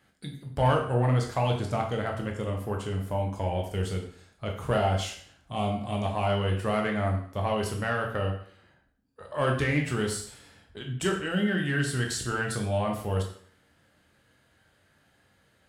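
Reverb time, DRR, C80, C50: 0.55 s, 1.0 dB, 10.5 dB, 6.5 dB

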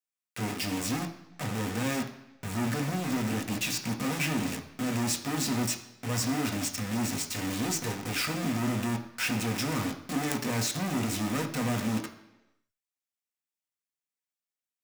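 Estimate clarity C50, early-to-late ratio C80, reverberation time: 11.0 dB, 13.0 dB, 1.0 s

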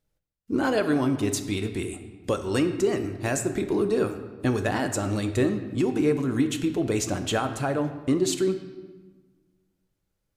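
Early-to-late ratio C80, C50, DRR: 11.0 dB, 10.0 dB, 7.0 dB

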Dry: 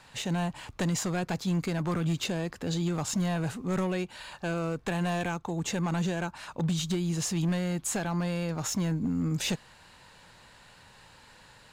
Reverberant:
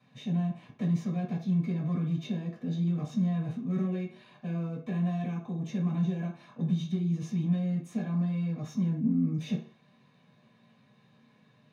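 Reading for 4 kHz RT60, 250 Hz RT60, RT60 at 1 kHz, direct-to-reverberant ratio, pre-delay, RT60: 0.45 s, 0.35 s, 0.50 s, −6.5 dB, 3 ms, 0.50 s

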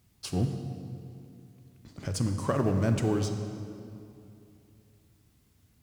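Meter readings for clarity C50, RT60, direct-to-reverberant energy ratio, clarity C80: 6.5 dB, 2.7 s, 5.5 dB, 7.5 dB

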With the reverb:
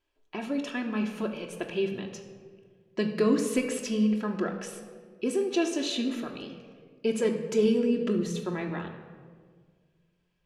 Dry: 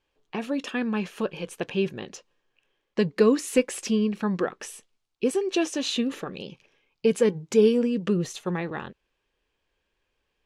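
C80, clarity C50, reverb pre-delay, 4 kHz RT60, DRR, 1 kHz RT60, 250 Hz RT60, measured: 9.0 dB, 7.5 dB, 3 ms, 1.0 s, 2.0 dB, 1.5 s, 2.1 s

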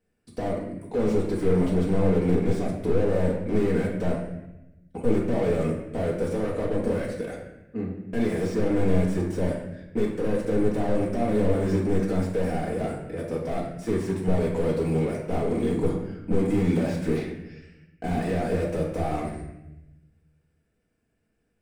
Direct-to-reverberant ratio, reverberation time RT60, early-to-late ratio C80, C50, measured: −4.0 dB, 0.90 s, 6.5 dB, 3.5 dB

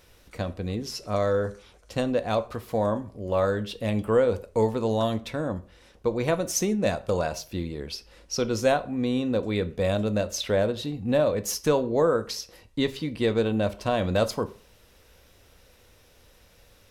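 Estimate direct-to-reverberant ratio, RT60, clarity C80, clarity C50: 11.0 dB, 0.40 s, 22.5 dB, 18.0 dB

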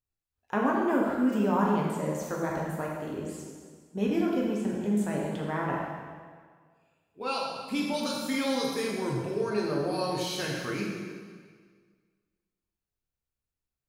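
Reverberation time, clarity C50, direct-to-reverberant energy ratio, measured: 1.8 s, 0.5 dB, −3.0 dB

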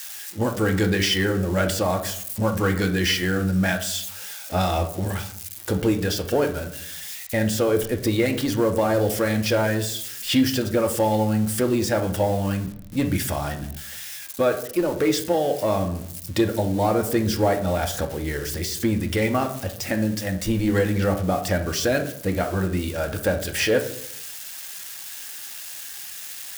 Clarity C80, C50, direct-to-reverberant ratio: 14.0 dB, 10.5 dB, 5.0 dB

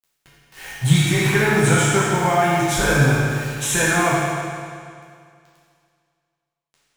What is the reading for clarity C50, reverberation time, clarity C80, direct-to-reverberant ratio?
−3.0 dB, 2.2 s, −1.0 dB, −8.5 dB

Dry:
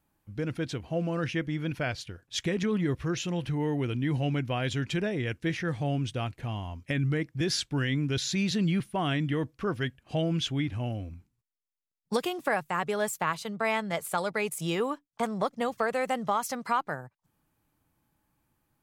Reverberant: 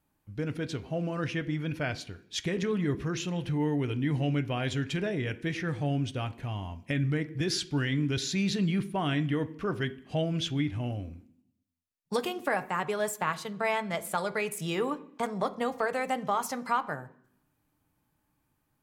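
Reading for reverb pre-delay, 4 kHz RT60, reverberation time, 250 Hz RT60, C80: 3 ms, 0.75 s, 0.65 s, 0.90 s, 20.0 dB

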